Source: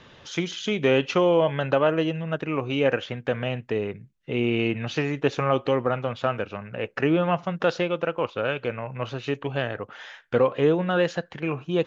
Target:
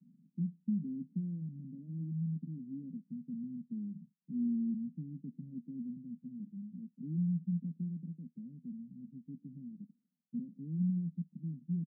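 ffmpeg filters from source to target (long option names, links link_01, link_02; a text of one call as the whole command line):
ffmpeg -i in.wav -af "aresample=11025,asoftclip=type=tanh:threshold=-16dB,aresample=44100,asuperpass=centerf=200:order=8:qfactor=2.1,volume=-2dB" out.wav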